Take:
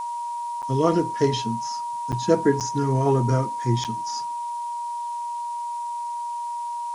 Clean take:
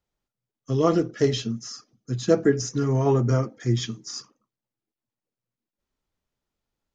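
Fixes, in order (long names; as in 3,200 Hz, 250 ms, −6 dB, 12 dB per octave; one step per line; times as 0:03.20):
notch filter 950 Hz, Q 30
repair the gap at 0:00.62/0:02.12/0:02.60/0:03.84, 7.8 ms
noise reduction from a noise print 30 dB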